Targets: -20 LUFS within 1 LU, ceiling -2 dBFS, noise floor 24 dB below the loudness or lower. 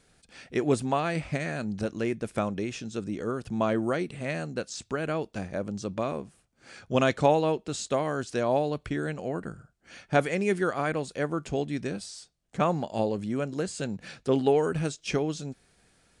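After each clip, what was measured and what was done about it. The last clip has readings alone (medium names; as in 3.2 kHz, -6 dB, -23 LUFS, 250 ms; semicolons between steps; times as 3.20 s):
loudness -29.5 LUFS; peak level -8.5 dBFS; loudness target -20.0 LUFS
-> trim +9.5 dB; peak limiter -2 dBFS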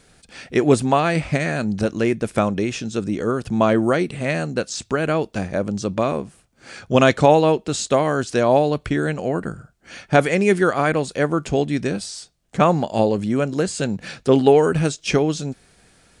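loudness -20.0 LUFS; peak level -2.0 dBFS; noise floor -57 dBFS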